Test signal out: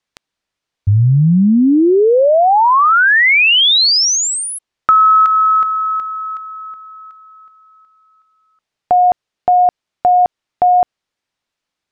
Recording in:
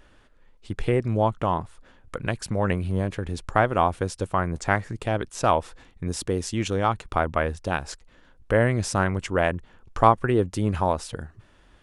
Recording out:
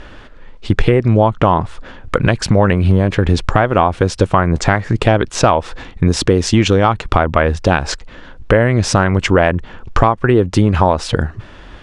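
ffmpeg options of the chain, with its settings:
-af "lowpass=5100,acompressor=threshold=0.0501:ratio=16,apsyclip=11.2,volume=0.841"

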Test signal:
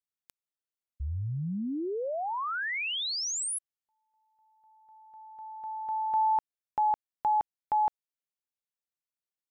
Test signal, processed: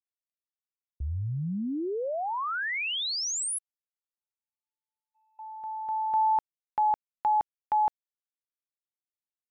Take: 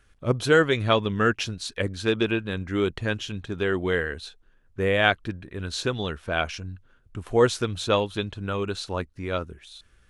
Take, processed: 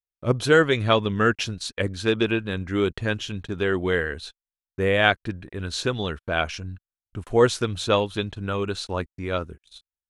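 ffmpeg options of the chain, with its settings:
-af "agate=range=0.00447:threshold=0.00398:ratio=16:release=39:detection=peak,volume=1.19"

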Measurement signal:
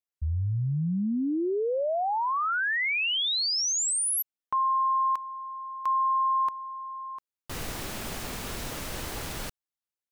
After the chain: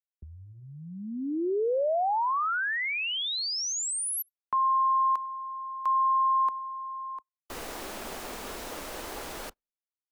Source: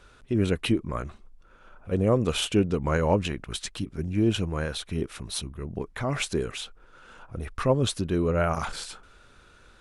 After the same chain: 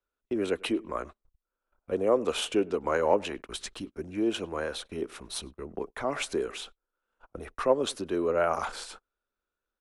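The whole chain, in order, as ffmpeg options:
-filter_complex "[0:a]equalizer=f=120:w=1.6:g=-10.5,asplit=2[s0][s1];[s1]adelay=100,lowpass=f=2400:p=1,volume=0.0668,asplit=2[s2][s3];[s3]adelay=100,lowpass=f=2400:p=1,volume=0.3[s4];[s0][s2][s4]amix=inputs=3:normalize=0,acrossover=split=280|1800[s5][s6][s7];[s5]acompressor=threshold=0.00891:ratio=6:attack=23:release=685:knee=2.83:detection=peak[s8];[s8][s6][s7]amix=inputs=3:normalize=0,agate=range=0.0251:threshold=0.00562:ratio=16:release=131:detection=peak,acrossover=split=240|1300[s9][s10][s11];[s10]acontrast=43[s12];[s9][s12][s11]amix=inputs=3:normalize=0,volume=0.631"

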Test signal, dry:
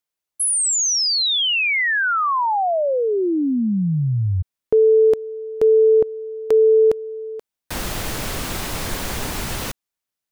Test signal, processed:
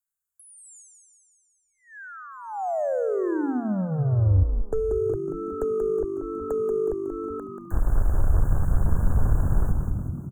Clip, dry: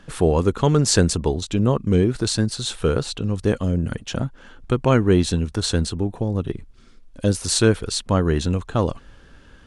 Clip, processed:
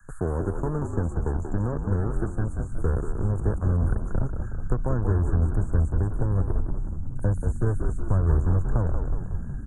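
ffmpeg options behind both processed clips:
-filter_complex "[0:a]acrossover=split=81|550[s0][s1][s2];[s0]acompressor=threshold=0.0282:ratio=4[s3];[s1]acompressor=threshold=0.0398:ratio=4[s4];[s2]acompressor=threshold=0.00891:ratio=4[s5];[s3][s4][s5]amix=inputs=3:normalize=0,asubboost=boost=5.5:cutoff=85,acrossover=split=120|1300|2800[s6][s7][s8][s9];[s7]acrusher=bits=4:mix=0:aa=0.5[s10];[s9]acompressor=threshold=0.00355:ratio=6:attack=1.4:release=318:detection=peak[s11];[s6][s10][s8][s11]amix=inputs=4:normalize=0,asuperstop=centerf=3400:order=20:qfactor=0.69,asplit=9[s12][s13][s14][s15][s16][s17][s18][s19][s20];[s13]adelay=184,afreqshift=-50,volume=0.531[s21];[s14]adelay=368,afreqshift=-100,volume=0.309[s22];[s15]adelay=552,afreqshift=-150,volume=0.178[s23];[s16]adelay=736,afreqshift=-200,volume=0.104[s24];[s17]adelay=920,afreqshift=-250,volume=0.0603[s25];[s18]adelay=1104,afreqshift=-300,volume=0.0347[s26];[s19]adelay=1288,afreqshift=-350,volume=0.0202[s27];[s20]adelay=1472,afreqshift=-400,volume=0.0117[s28];[s12][s21][s22][s23][s24][s25][s26][s27][s28]amix=inputs=9:normalize=0"

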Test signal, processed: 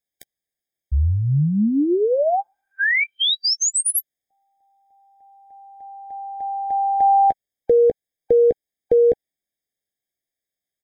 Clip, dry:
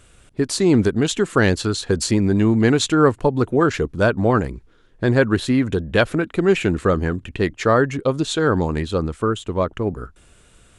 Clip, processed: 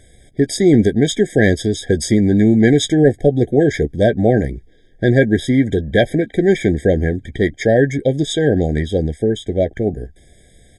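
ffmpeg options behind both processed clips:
-filter_complex "[0:a]asplit=2[s0][s1];[s1]adelay=14,volume=0.251[s2];[s0][s2]amix=inputs=2:normalize=0,apsyclip=2,afftfilt=real='re*eq(mod(floor(b*sr/1024/780),2),0)':imag='im*eq(mod(floor(b*sr/1024/780),2),0)':win_size=1024:overlap=0.75,volume=0.794"

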